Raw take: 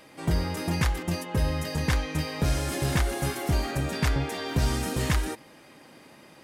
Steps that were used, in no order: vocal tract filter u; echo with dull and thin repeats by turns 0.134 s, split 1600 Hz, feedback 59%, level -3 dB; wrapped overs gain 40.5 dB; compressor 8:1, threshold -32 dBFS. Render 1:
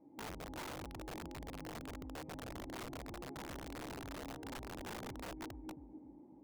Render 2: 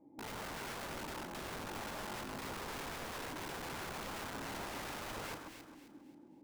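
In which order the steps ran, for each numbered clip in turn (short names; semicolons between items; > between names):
echo with dull and thin repeats by turns > compressor > vocal tract filter > wrapped overs; vocal tract filter > compressor > wrapped overs > echo with dull and thin repeats by turns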